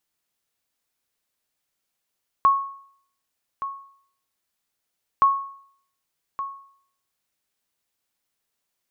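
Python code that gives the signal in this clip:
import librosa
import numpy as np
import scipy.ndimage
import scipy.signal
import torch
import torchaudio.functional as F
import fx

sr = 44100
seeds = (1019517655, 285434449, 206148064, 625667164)

y = fx.sonar_ping(sr, hz=1100.0, decay_s=0.6, every_s=2.77, pings=2, echo_s=1.17, echo_db=-13.0, level_db=-10.0)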